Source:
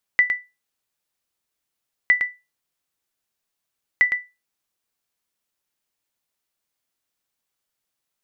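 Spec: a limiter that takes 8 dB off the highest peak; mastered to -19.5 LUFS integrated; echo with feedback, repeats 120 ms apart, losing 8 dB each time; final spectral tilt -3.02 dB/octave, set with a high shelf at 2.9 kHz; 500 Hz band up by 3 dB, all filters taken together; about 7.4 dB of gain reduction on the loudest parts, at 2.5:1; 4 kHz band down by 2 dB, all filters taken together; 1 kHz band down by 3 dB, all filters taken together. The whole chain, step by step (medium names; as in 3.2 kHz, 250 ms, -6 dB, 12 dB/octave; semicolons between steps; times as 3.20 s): peaking EQ 500 Hz +5.5 dB; peaking EQ 1 kHz -6 dB; treble shelf 2.9 kHz +5.5 dB; peaking EQ 4 kHz -7 dB; compression 2.5:1, threshold -25 dBFS; peak limiter -17 dBFS; feedback delay 120 ms, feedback 40%, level -8 dB; trim +12 dB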